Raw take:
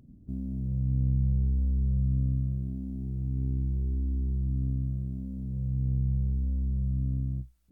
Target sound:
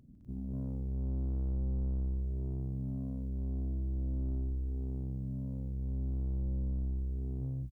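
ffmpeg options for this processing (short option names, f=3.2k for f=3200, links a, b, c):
-af "aecho=1:1:151.6|209.9|247.8:0.251|0.501|1,asoftclip=type=tanh:threshold=-26dB,aeval=exprs='0.0501*(cos(1*acos(clip(val(0)/0.0501,-1,1)))-cos(1*PI/2))+0.00224*(cos(4*acos(clip(val(0)/0.0501,-1,1)))-cos(4*PI/2))':c=same,volume=-4.5dB"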